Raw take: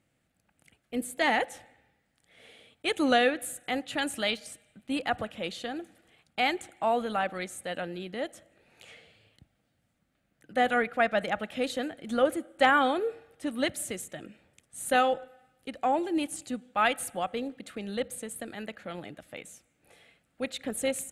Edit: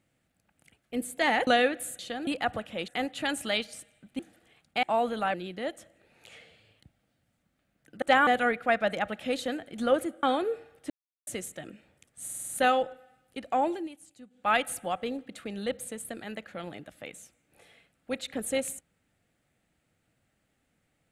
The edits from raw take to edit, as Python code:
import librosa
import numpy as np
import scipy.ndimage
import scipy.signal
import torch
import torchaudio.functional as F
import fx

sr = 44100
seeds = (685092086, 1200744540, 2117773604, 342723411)

y = fx.edit(x, sr, fx.cut(start_s=1.47, length_s=1.62),
    fx.swap(start_s=3.61, length_s=1.31, other_s=5.53, other_length_s=0.28),
    fx.cut(start_s=6.45, length_s=0.31),
    fx.cut(start_s=7.27, length_s=0.63),
    fx.move(start_s=12.54, length_s=0.25, to_s=10.58),
    fx.silence(start_s=13.46, length_s=0.37),
    fx.stutter(start_s=14.79, slice_s=0.05, count=6),
    fx.fade_down_up(start_s=16.03, length_s=0.75, db=-15.5, fade_s=0.17), tone=tone)